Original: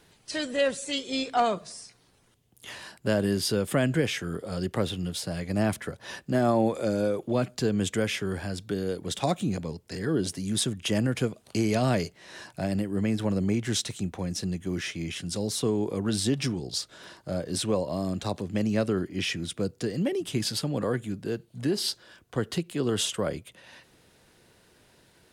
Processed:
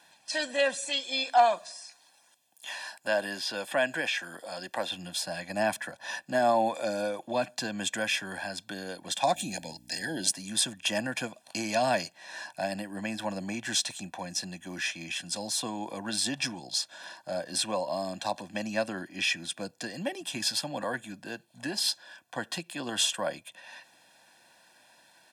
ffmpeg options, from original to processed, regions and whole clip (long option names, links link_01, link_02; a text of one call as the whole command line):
ffmpeg -i in.wav -filter_complex "[0:a]asettb=1/sr,asplit=3[link_01][link_02][link_03];[link_01]atrim=end=0.894[link_04];[link_02]atrim=start=0.89:end=4.92,asetpts=PTS-STARTPTS,afade=type=in:duration=0.004:curve=qsin,afade=type=out:start_time=4.026:duration=0.004:curve=qsin,bass=frequency=250:gain=-10,treble=frequency=4000:gain=5,acrossover=split=4100[link_05][link_06];[link_06]acompressor=threshold=-47dB:ratio=4:attack=1:release=60[link_07];[link_05][link_07]amix=inputs=2:normalize=0[link_08];[link_03]atrim=start=4.916[link_09];[link_04][link_08]acrossfade=duration=0.004:curve1=hsin:curve2=qsin[link_10];[link_10][link_09]acrossfade=duration=0.004:curve1=qsin:curve2=hsin,asettb=1/sr,asplit=3[link_11][link_12][link_13];[link_11]atrim=end=9.344[link_14];[link_12]atrim=start=9.34:end=10.32,asetpts=PTS-STARTPTS,afade=type=in:duration=0.004:curve=qsin,afade=type=out:start_time=0.976:duration=0.004:curve=qsin,highshelf=frequency=4100:gain=10,aeval=exprs='val(0)+0.01*(sin(2*PI*60*n/s)+sin(2*PI*2*60*n/s)/2+sin(2*PI*3*60*n/s)/3+sin(2*PI*4*60*n/s)/4+sin(2*PI*5*60*n/s)/5)':channel_layout=same,asuperstop=centerf=1200:order=12:qfactor=2.1[link_15];[link_13]atrim=start=10.316[link_16];[link_14][link_15]acrossfade=duration=0.004:curve1=hsin:curve2=qsin[link_17];[link_17][link_16]acrossfade=duration=0.004:curve1=qsin:curve2=hsin,highpass=410,highshelf=frequency=12000:gain=-4.5,aecho=1:1:1.2:0.91" out.wav